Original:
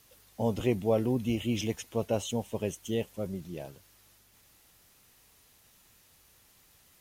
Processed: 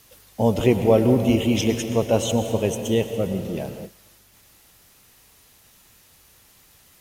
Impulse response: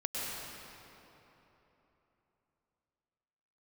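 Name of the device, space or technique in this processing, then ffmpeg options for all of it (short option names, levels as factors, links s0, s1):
keyed gated reverb: -filter_complex "[0:a]asplit=3[s0][s1][s2];[1:a]atrim=start_sample=2205[s3];[s1][s3]afir=irnorm=-1:irlink=0[s4];[s2]apad=whole_len=308916[s5];[s4][s5]sidechaingate=range=0.0224:threshold=0.00141:ratio=16:detection=peak,volume=0.355[s6];[s0][s6]amix=inputs=2:normalize=0,volume=2.37"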